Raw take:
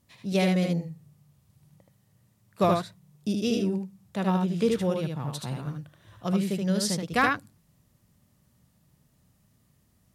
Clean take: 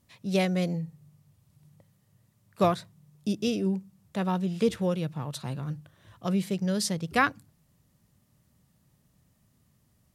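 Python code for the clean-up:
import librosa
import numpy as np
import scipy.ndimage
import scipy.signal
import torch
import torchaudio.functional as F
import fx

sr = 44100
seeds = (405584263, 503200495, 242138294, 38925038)

y = fx.fix_declip(x, sr, threshold_db=-12.0)
y = fx.fix_echo_inverse(y, sr, delay_ms=76, level_db=-3.5)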